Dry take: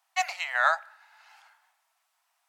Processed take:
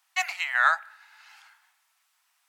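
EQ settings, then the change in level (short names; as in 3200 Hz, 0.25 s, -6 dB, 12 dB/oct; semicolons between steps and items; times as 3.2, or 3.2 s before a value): HPF 1300 Hz 12 dB/oct; dynamic EQ 5200 Hz, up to -7 dB, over -47 dBFS, Q 0.94; +5.5 dB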